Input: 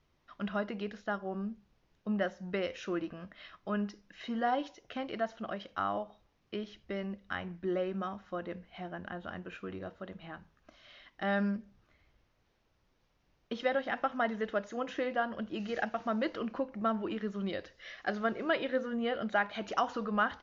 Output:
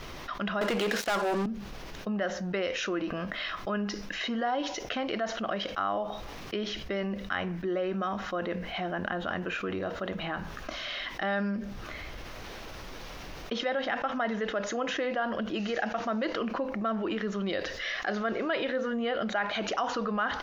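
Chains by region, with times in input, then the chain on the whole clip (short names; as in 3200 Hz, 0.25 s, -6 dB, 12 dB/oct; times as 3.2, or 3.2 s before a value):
0.61–1.46 HPF 280 Hz + sample leveller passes 5
whole clip: bell 100 Hz -7 dB 2.6 oct; notch 900 Hz, Q 29; fast leveller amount 70%; gain -2 dB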